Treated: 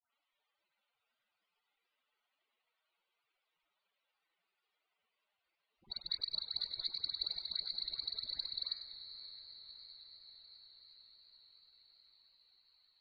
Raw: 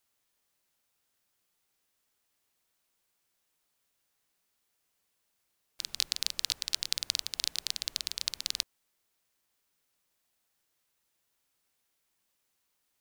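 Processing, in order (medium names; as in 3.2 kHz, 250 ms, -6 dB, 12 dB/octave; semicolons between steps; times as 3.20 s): low-pass 4.3 kHz 12 dB/octave; bass shelf 360 Hz -5.5 dB; band-stop 1.7 kHz, Q 19; de-hum 133.5 Hz, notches 17; in parallel at -3.5 dB: wavefolder -24.5 dBFS; on the sum: loudest bins only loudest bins 32; phase dispersion highs, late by 148 ms, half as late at 2.1 kHz; on a send: echo that smears into a reverb 569 ms, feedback 69%, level -12 dB; on the sum: modulated delay 99 ms, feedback 54%, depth 95 cents, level -12 dB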